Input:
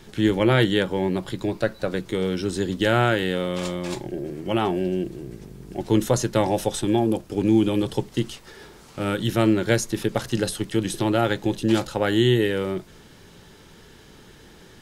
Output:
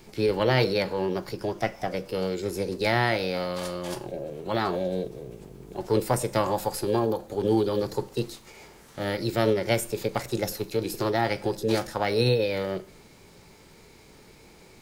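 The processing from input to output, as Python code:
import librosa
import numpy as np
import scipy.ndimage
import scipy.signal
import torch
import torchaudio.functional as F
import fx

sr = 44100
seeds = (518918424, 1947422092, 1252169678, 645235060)

y = fx.rev_schroeder(x, sr, rt60_s=0.55, comb_ms=31, drr_db=16.5)
y = fx.formant_shift(y, sr, semitones=5)
y = y * librosa.db_to_amplitude(-4.0)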